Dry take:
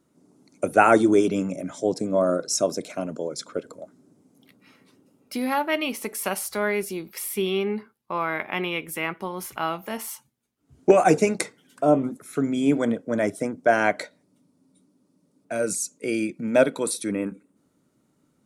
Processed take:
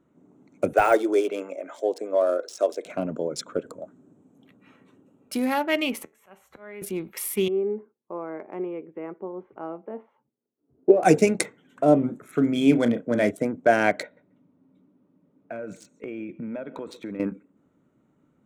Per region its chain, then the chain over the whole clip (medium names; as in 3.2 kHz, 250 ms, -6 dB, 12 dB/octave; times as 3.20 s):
0.73–2.86 s: high-pass 410 Hz 24 dB/octave + de-esser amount 75%
3.48–5.46 s: peaking EQ 8.7 kHz +6.5 dB 0.81 oct + band-stop 2.1 kHz, Q 9.7
6.03–6.82 s: slow attack 770 ms + feedback comb 78 Hz, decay 0.21 s, mix 50% + three bands compressed up and down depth 40%
7.48–11.03 s: band-pass filter 410 Hz, Q 1.9 + distance through air 230 m
11.99–13.31 s: band-stop 4.8 kHz, Q 19 + dynamic bell 3.2 kHz, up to +5 dB, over -45 dBFS, Q 1.1 + doubling 33 ms -10 dB
14.03–17.20 s: low-pass 3.7 kHz + compression 10:1, threshold -32 dBFS + feedback delay 137 ms, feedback 16%, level -21 dB
whole clip: local Wiener filter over 9 samples; dynamic bell 1.1 kHz, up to -6 dB, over -37 dBFS, Q 1.6; trim +2 dB